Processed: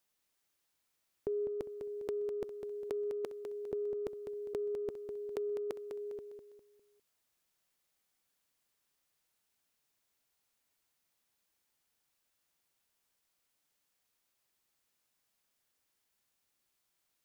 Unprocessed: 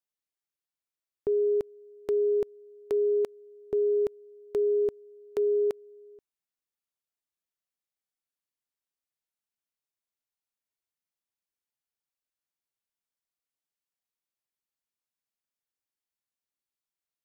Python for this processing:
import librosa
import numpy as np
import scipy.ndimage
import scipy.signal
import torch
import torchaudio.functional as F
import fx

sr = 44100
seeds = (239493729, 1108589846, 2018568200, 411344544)

p1 = fx.over_compress(x, sr, threshold_db=-35.0, ratio=-1.0)
p2 = p1 + fx.echo_feedback(p1, sr, ms=202, feedback_pct=39, wet_db=-7.5, dry=0)
y = F.gain(torch.from_numpy(p2), 1.5).numpy()